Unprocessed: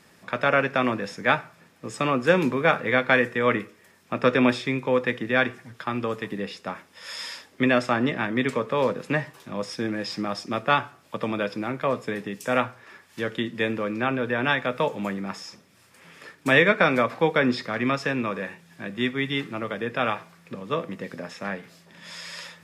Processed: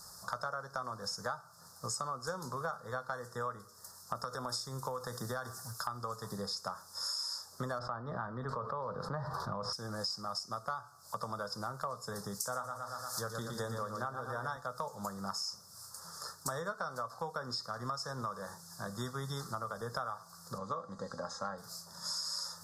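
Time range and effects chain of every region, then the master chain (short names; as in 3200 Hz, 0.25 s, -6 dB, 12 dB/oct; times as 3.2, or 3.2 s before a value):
4.15–5.87 high shelf 8500 Hz +11 dB + compressor, threshold -21 dBFS
7.79–9.73 air absorption 410 m + fast leveller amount 70%
12.41–14.57 feedback echo 0.116 s, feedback 51%, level -6 dB + mismatched tape noise reduction encoder only
20.58–21.58 air absorption 120 m + notch 5400 Hz, Q 7.7 + comb 3.7 ms, depth 46%
whole clip: Chebyshev band-stop 1300–4800 Hz, order 3; passive tone stack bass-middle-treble 10-0-10; compressor 12:1, threshold -48 dBFS; gain +13 dB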